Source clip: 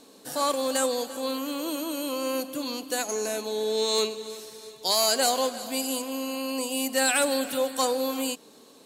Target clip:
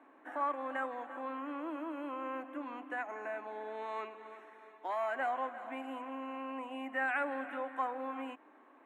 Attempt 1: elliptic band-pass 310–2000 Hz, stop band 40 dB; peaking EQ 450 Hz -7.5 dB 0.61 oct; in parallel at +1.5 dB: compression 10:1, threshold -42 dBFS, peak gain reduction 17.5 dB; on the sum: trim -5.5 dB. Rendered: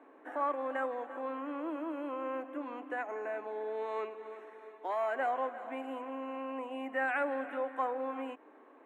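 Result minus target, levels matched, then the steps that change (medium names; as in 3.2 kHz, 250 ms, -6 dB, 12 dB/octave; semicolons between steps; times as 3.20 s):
500 Hz band +3.0 dB
change: peaking EQ 450 Hz -18 dB 0.61 oct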